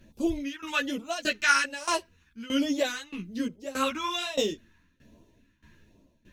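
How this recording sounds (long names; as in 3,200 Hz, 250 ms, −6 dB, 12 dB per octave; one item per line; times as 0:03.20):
phaser sweep stages 2, 1.2 Hz, lowest notch 550–1,600 Hz
tremolo saw down 1.6 Hz, depth 90%
a shimmering, thickened sound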